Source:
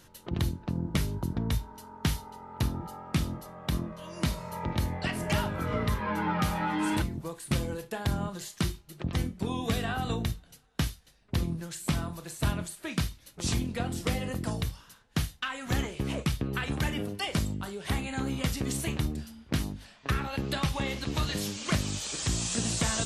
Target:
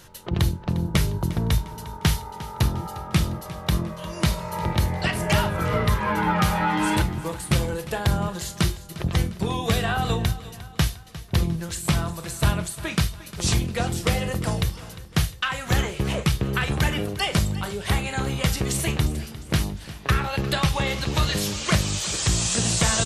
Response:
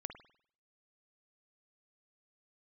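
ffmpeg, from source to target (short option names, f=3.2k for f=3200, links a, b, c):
-filter_complex "[0:a]equalizer=f=260:t=o:w=0.31:g=-12.5,asplit=2[a][b];[b]aecho=0:1:353|706|1059|1412:0.15|0.0748|0.0374|0.0187[c];[a][c]amix=inputs=2:normalize=0,volume=8dB"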